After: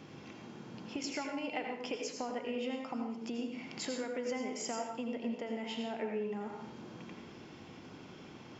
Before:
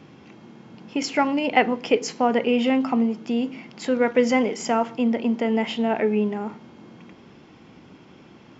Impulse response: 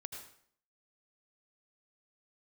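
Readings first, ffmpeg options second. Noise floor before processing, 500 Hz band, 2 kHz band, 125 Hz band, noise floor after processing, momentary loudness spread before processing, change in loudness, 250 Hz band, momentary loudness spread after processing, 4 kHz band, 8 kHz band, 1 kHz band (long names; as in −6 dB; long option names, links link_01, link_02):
−49 dBFS, −16.0 dB, −16.0 dB, −13.0 dB, −52 dBFS, 7 LU, −16.5 dB, −16.5 dB, 13 LU, −11.5 dB, can't be measured, −17.0 dB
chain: -filter_complex "[0:a]bass=frequency=250:gain=-2,treble=frequency=4000:gain=5,acompressor=threshold=-34dB:ratio=6[link_01];[1:a]atrim=start_sample=2205[link_02];[link_01][link_02]afir=irnorm=-1:irlink=0,volume=1dB"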